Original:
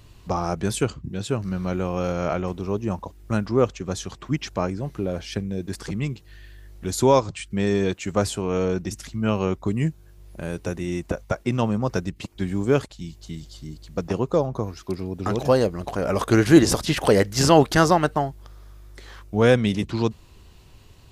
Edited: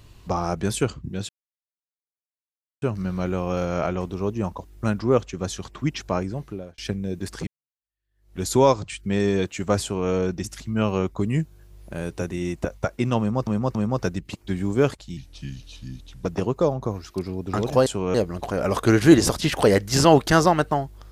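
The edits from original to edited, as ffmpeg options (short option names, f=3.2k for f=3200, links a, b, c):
-filter_complex "[0:a]asplit=10[a][b][c][d][e][f][g][h][i][j];[a]atrim=end=1.29,asetpts=PTS-STARTPTS,afade=t=out:st=1.286:d=0.004:c=hsin,apad=pad_dur=1.53[k];[b]atrim=start=1.29:end=5.25,asetpts=PTS-STARTPTS,afade=t=in:d=0.004:c=hsin,afade=t=out:st=3.48:d=0.48[l];[c]atrim=start=5.25:end=5.94,asetpts=PTS-STARTPTS,afade=t=in:d=0.004:c=hsin,afade=t=out:st=0.686:d=0.004:c=hsin[m];[d]atrim=start=5.94:end=11.942,asetpts=PTS-STARTPTS,afade=t=in:d=0.93:c=exp[n];[e]atrim=start=11.658:end=11.942[o];[f]atrim=start=11.658:end=13.084[p];[g]atrim=start=13.08:end=13.98,asetpts=PTS-STARTPTS,asetrate=36603,aresample=44100,atrim=end_sample=47819,asetpts=PTS-STARTPTS[q];[h]atrim=start=13.976:end=15.592[r];[i]atrim=start=8.288:end=8.572[s];[j]atrim=start=15.588[t];[k][l][m][n]concat=n=4:v=0:a=1[u];[u][o]acrossfade=d=0.004:c1=hsin:c2=hsin[v];[v][p]acrossfade=d=0.004:c1=hsin:c2=hsin[w];[w][q]acrossfade=d=0.004:c1=hsin:c2=hsin[x];[x][r]acrossfade=d=0.004:c1=hsin:c2=hsin[y];[y][s]acrossfade=d=0.004:c1=hsin:c2=hsin[z];[z][t]acrossfade=d=0.004:c1=hsin:c2=hsin"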